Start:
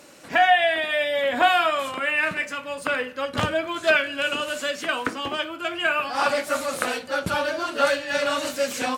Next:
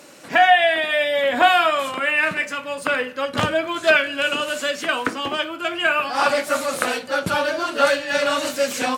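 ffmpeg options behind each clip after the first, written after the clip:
ffmpeg -i in.wav -af "highpass=97,volume=3.5dB" out.wav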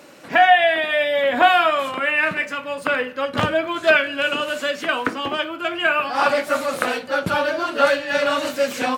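ffmpeg -i in.wav -af "equalizer=frequency=8300:width_type=o:width=1.7:gain=-7.5,volume=1dB" out.wav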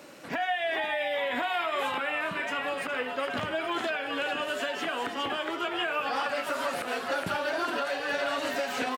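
ffmpeg -i in.wav -filter_complex "[0:a]acrossover=split=1200|3900[link_01][link_02][link_03];[link_01]acompressor=threshold=-25dB:ratio=4[link_04];[link_02]acompressor=threshold=-28dB:ratio=4[link_05];[link_03]acompressor=threshold=-40dB:ratio=4[link_06];[link_04][link_05][link_06]amix=inputs=3:normalize=0,asplit=2[link_07][link_08];[link_08]asplit=6[link_09][link_10][link_11][link_12][link_13][link_14];[link_09]adelay=413,afreqshift=130,volume=-7dB[link_15];[link_10]adelay=826,afreqshift=260,volume=-13dB[link_16];[link_11]adelay=1239,afreqshift=390,volume=-19dB[link_17];[link_12]adelay=1652,afreqshift=520,volume=-25.1dB[link_18];[link_13]adelay=2065,afreqshift=650,volume=-31.1dB[link_19];[link_14]adelay=2478,afreqshift=780,volume=-37.1dB[link_20];[link_15][link_16][link_17][link_18][link_19][link_20]amix=inputs=6:normalize=0[link_21];[link_07][link_21]amix=inputs=2:normalize=0,alimiter=limit=-17dB:level=0:latency=1:release=135,volume=-3.5dB" out.wav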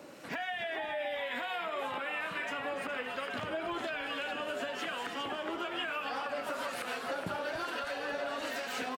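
ffmpeg -i in.wav -filter_complex "[0:a]acompressor=threshold=-31dB:ratio=6,acrossover=split=1100[link_01][link_02];[link_01]aeval=exprs='val(0)*(1-0.5/2+0.5/2*cos(2*PI*1.1*n/s))':channel_layout=same[link_03];[link_02]aeval=exprs='val(0)*(1-0.5/2-0.5/2*cos(2*PI*1.1*n/s))':channel_layout=same[link_04];[link_03][link_04]amix=inputs=2:normalize=0,asplit=5[link_05][link_06][link_07][link_08][link_09];[link_06]adelay=285,afreqshift=-56,volume=-12.5dB[link_10];[link_07]adelay=570,afreqshift=-112,volume=-19.6dB[link_11];[link_08]adelay=855,afreqshift=-168,volume=-26.8dB[link_12];[link_09]adelay=1140,afreqshift=-224,volume=-33.9dB[link_13];[link_05][link_10][link_11][link_12][link_13]amix=inputs=5:normalize=0" out.wav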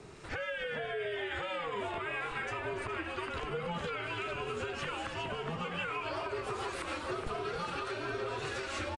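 ffmpeg -i in.wav -af "afreqshift=-170,aresample=22050,aresample=44100" -ar 48000 -c:a libmp3lame -b:a 96k out.mp3

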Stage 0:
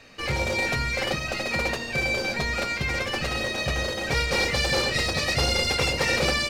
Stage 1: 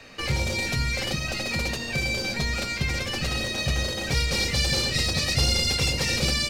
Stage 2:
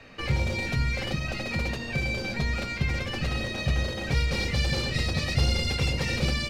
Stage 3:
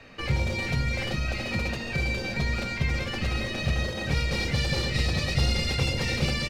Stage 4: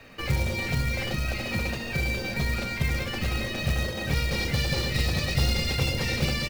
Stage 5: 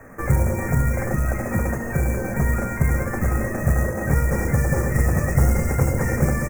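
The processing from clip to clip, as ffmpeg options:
ffmpeg -i in.wav -filter_complex "[0:a]acrossover=split=270|3000[link_01][link_02][link_03];[link_02]acompressor=threshold=-36dB:ratio=6[link_04];[link_01][link_04][link_03]amix=inputs=3:normalize=0,volume=3.5dB" out.wav
ffmpeg -i in.wav -af "bass=frequency=250:gain=3,treble=frequency=4000:gain=-10,volume=-2dB" out.wav
ffmpeg -i in.wav -af "aecho=1:1:409:0.398" out.wav
ffmpeg -i in.wav -af "acrusher=bits=4:mode=log:mix=0:aa=0.000001" out.wav
ffmpeg -i in.wav -af "asuperstop=centerf=3600:order=8:qfactor=0.74,volume=7.5dB" out.wav

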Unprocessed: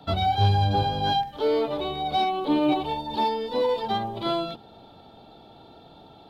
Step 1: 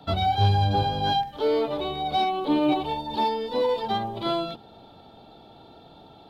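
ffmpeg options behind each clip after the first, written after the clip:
ffmpeg -i in.wav -af anull out.wav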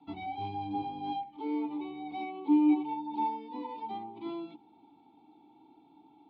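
ffmpeg -i in.wav -filter_complex "[0:a]asplit=3[link_01][link_02][link_03];[link_01]bandpass=frequency=300:width_type=q:width=8,volume=0dB[link_04];[link_02]bandpass=frequency=870:width_type=q:width=8,volume=-6dB[link_05];[link_03]bandpass=frequency=2240:width_type=q:width=8,volume=-9dB[link_06];[link_04][link_05][link_06]amix=inputs=3:normalize=0" out.wav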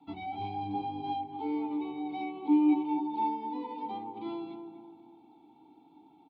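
ffmpeg -i in.wav -filter_complex "[0:a]asplit=2[link_01][link_02];[link_02]adelay=248,lowpass=frequency=1100:poles=1,volume=-6dB,asplit=2[link_03][link_04];[link_04]adelay=248,lowpass=frequency=1100:poles=1,volume=0.48,asplit=2[link_05][link_06];[link_06]adelay=248,lowpass=frequency=1100:poles=1,volume=0.48,asplit=2[link_07][link_08];[link_08]adelay=248,lowpass=frequency=1100:poles=1,volume=0.48,asplit=2[link_09][link_10];[link_10]adelay=248,lowpass=frequency=1100:poles=1,volume=0.48,asplit=2[link_11][link_12];[link_12]adelay=248,lowpass=frequency=1100:poles=1,volume=0.48[link_13];[link_01][link_03][link_05][link_07][link_09][link_11][link_13]amix=inputs=7:normalize=0" out.wav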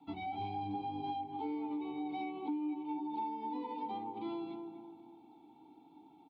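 ffmpeg -i in.wav -af "acompressor=threshold=-34dB:ratio=10,volume=-1dB" out.wav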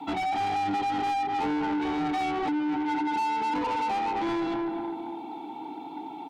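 ffmpeg -i in.wav -filter_complex "[0:a]asplit=2[link_01][link_02];[link_02]highpass=frequency=720:poles=1,volume=27dB,asoftclip=type=tanh:threshold=-27.5dB[link_03];[link_01][link_03]amix=inputs=2:normalize=0,lowpass=frequency=2500:poles=1,volume=-6dB,volume=6dB" out.wav

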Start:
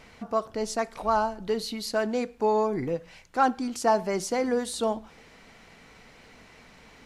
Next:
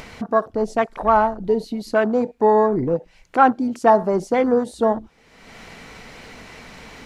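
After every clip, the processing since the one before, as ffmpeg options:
ffmpeg -i in.wav -af "afwtdn=0.0178,acompressor=mode=upward:threshold=-32dB:ratio=2.5,volume=8.5dB" out.wav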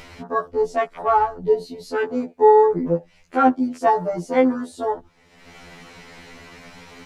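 ffmpeg -i in.wav -af "afftfilt=real='re*2*eq(mod(b,4),0)':imag='im*2*eq(mod(b,4),0)':win_size=2048:overlap=0.75" out.wav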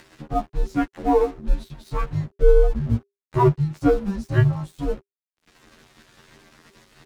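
ffmpeg -i in.wav -af "aeval=exprs='sgn(val(0))*max(abs(val(0))-0.00794,0)':channel_layout=same,afreqshift=-400" out.wav

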